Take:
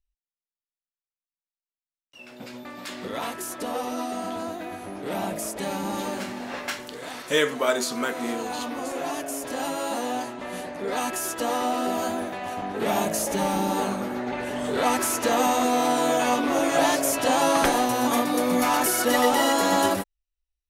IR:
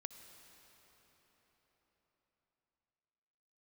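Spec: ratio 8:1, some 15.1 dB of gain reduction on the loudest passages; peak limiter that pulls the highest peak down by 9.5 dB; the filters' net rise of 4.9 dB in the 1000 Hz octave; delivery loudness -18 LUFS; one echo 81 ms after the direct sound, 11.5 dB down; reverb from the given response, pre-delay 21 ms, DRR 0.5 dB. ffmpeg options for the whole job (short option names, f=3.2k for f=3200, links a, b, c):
-filter_complex "[0:a]equalizer=f=1k:t=o:g=6.5,acompressor=threshold=-30dB:ratio=8,alimiter=level_in=3.5dB:limit=-24dB:level=0:latency=1,volume=-3.5dB,aecho=1:1:81:0.266,asplit=2[a][b];[1:a]atrim=start_sample=2205,adelay=21[c];[b][c]afir=irnorm=-1:irlink=0,volume=3.5dB[d];[a][d]amix=inputs=2:normalize=0,volume=15.5dB"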